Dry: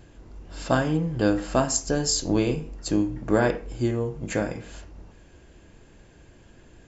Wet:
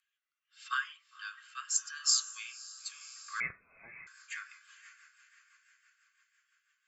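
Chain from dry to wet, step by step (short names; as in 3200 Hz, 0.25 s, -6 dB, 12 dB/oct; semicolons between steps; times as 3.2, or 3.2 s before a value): per-bin expansion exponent 1.5; Chebyshev high-pass 1100 Hz, order 10; diffused feedback echo 0.543 s, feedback 49%, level -13.5 dB; 3.4–4.07 inverted band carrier 3700 Hz; rotary speaker horn 0.85 Hz, later 6 Hz, at 3.29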